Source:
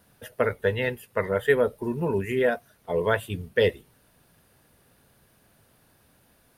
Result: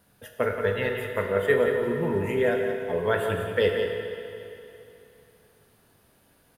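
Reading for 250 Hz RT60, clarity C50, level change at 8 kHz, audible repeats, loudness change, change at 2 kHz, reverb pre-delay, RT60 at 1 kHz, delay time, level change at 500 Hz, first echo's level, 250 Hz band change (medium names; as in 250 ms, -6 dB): 2.9 s, 2.0 dB, no reading, 1, 0.0 dB, 0.0 dB, 21 ms, 2.9 s, 177 ms, +1.0 dB, -8.0 dB, 0.0 dB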